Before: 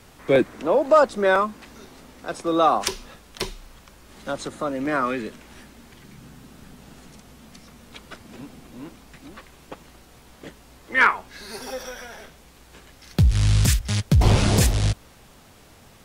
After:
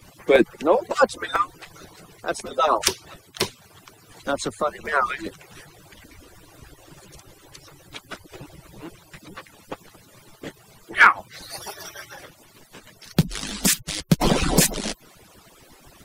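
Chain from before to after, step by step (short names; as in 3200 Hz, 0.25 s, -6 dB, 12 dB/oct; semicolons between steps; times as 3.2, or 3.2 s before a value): median-filter separation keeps percussive; high shelf 9000 Hz +4 dB; gain +4.5 dB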